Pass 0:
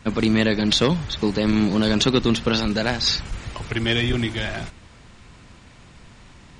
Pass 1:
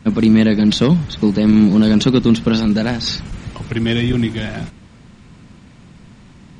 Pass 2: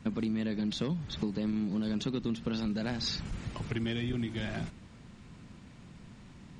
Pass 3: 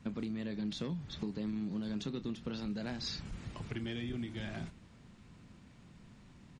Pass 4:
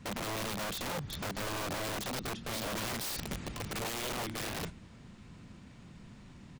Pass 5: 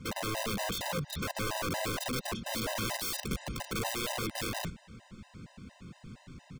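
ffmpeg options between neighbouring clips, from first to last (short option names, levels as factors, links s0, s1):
-af "equalizer=f=190:t=o:w=1.7:g=11,volume=0.891"
-af "acompressor=threshold=0.0891:ratio=6,volume=0.355"
-filter_complex "[0:a]asplit=2[s0][s1];[s1]adelay=29,volume=0.211[s2];[s0][s2]amix=inputs=2:normalize=0,volume=0.501"
-af "aeval=exprs='(mod(70.8*val(0)+1,2)-1)/70.8':c=same,volume=1.78"
-af "afftfilt=real='re*gt(sin(2*PI*4.3*pts/sr)*(1-2*mod(floor(b*sr/1024/520),2)),0)':imag='im*gt(sin(2*PI*4.3*pts/sr)*(1-2*mod(floor(b*sr/1024/520),2)),0)':win_size=1024:overlap=0.75,volume=1.88"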